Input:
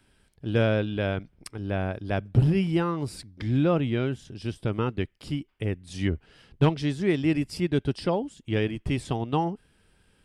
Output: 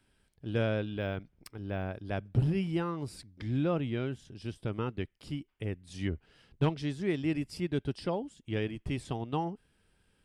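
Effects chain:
0:00.98–0:01.94: linearly interpolated sample-rate reduction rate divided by 2×
level −7 dB

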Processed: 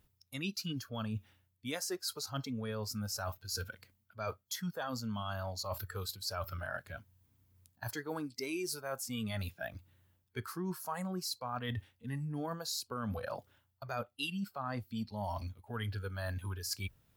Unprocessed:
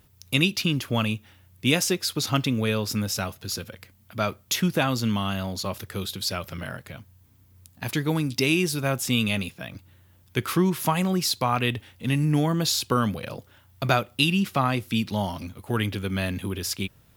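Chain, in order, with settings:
noise reduction from a noise print of the clip's start 15 dB
reversed playback
downward compressor 10 to 1, threshold −38 dBFS, peak gain reduction 21.5 dB
reversed playback
level +2.5 dB

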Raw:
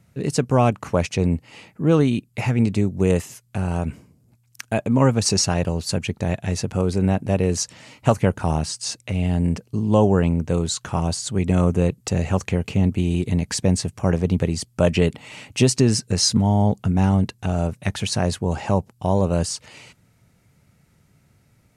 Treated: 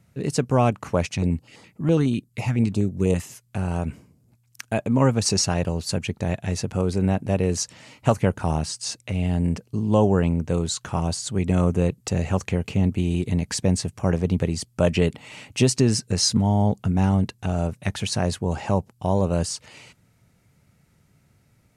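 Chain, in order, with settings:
0:01.14–0:03.22: notch on a step sequencer 12 Hz 440–2,600 Hz
level −2 dB

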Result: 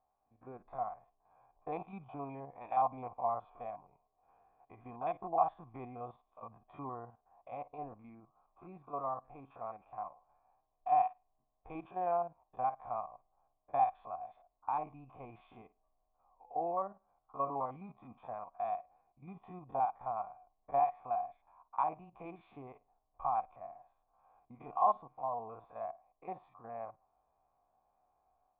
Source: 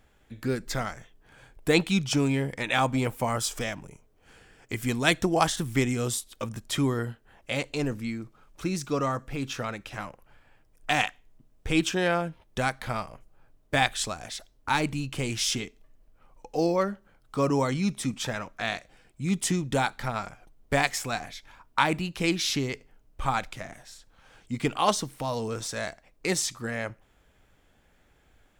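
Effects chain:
spectrum averaged block by block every 50 ms
automatic gain control gain up to 5 dB
formant resonators in series a

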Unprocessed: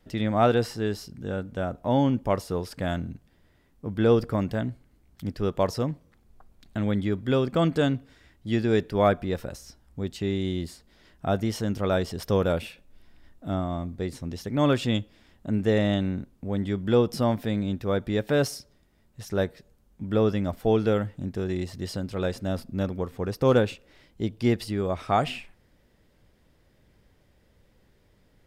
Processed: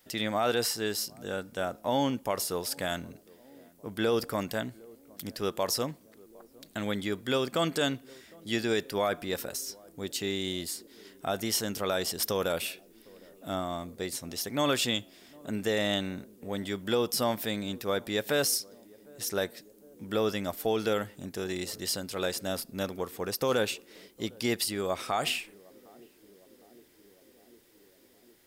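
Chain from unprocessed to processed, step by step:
RIAA equalisation recording
brickwall limiter −17 dBFS, peak gain reduction 8 dB
feedback echo with a band-pass in the loop 758 ms, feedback 81%, band-pass 320 Hz, level −23 dB

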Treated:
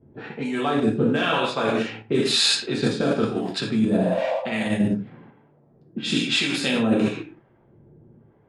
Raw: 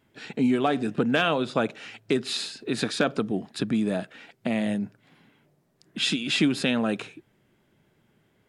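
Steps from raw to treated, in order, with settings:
reverb whose tail is shaped and stops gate 220 ms falling, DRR −3.5 dB
in parallel at +0.5 dB: output level in coarse steps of 11 dB
on the sum: healed spectral selection 0:03.99–0:04.66, 510–1,200 Hz
reversed playback
downward compressor 12 to 1, threshold −22 dBFS, peak gain reduction 13 dB
reversed playback
low-pass that shuts in the quiet parts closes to 620 Hz, open at −21.5 dBFS
two-band tremolo in antiphase 1 Hz, depth 70%, crossover 610 Hz
level +7 dB

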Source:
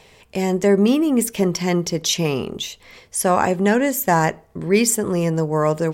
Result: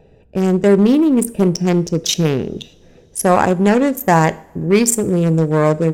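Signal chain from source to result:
adaptive Wiener filter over 41 samples
in parallel at −7 dB: hard clipping −18.5 dBFS, distortion −8 dB
on the sum: convolution reverb, pre-delay 3 ms, DRR 15.5 dB
level +3 dB

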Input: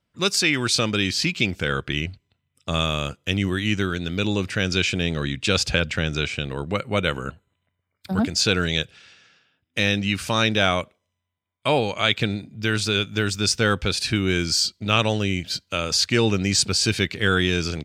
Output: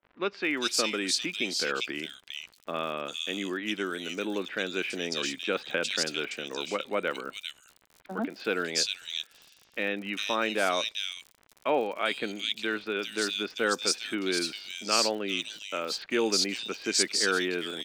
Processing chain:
high-pass filter 260 Hz 24 dB per octave
surface crackle 68 per second −32 dBFS
multiband delay without the direct sound lows, highs 400 ms, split 2,700 Hz
level −5 dB

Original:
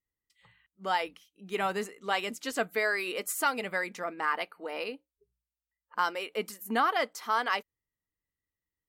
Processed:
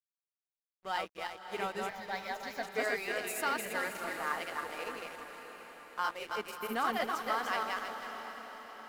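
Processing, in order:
feedback delay that plays each chunk backwards 159 ms, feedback 56%, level −1.5 dB
dead-zone distortion −42 dBFS
0:01.89–0:02.63: phaser with its sweep stopped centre 1,900 Hz, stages 8
feedback delay with all-pass diffusion 575 ms, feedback 56%, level −10 dB
level −6 dB

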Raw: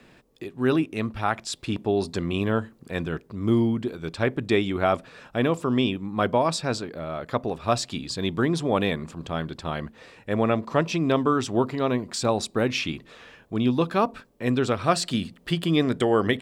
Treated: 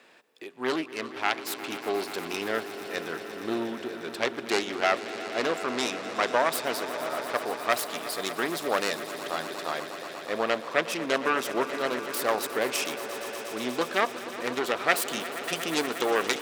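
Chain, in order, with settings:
phase distortion by the signal itself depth 0.29 ms
high-pass filter 490 Hz 12 dB per octave
echo that builds up and dies away 119 ms, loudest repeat 5, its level −15.5 dB

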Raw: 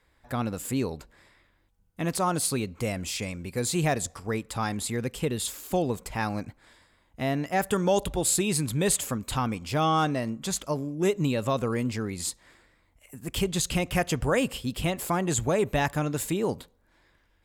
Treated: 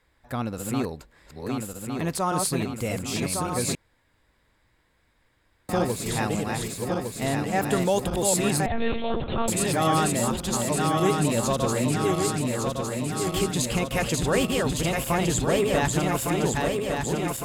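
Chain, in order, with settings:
feedback delay that plays each chunk backwards 579 ms, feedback 78%, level −3 dB
0:03.75–0:05.69: fill with room tone
0:08.66–0:09.48: one-pitch LPC vocoder at 8 kHz 230 Hz

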